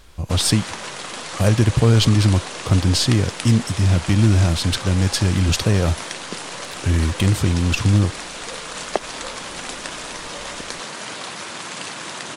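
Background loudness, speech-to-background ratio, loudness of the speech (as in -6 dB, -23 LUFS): -30.0 LUFS, 11.5 dB, -18.5 LUFS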